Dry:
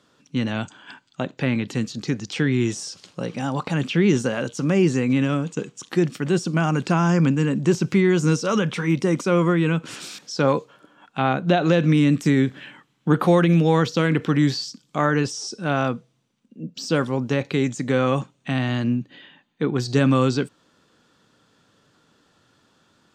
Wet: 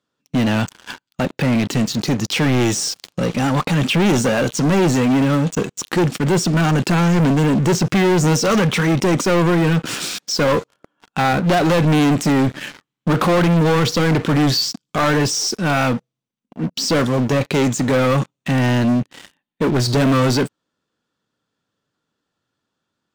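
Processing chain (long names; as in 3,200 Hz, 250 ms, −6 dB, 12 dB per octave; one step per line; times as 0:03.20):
leveller curve on the samples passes 5
level −6.5 dB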